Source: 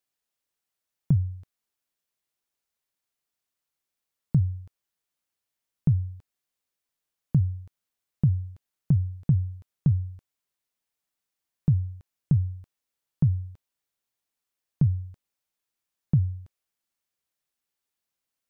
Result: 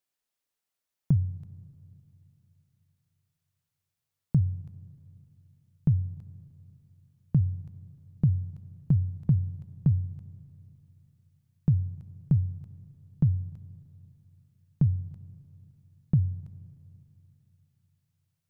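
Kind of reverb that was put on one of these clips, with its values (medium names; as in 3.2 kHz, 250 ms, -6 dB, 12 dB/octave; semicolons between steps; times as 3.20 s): Schroeder reverb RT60 3.3 s, combs from 33 ms, DRR 17.5 dB; trim -1.5 dB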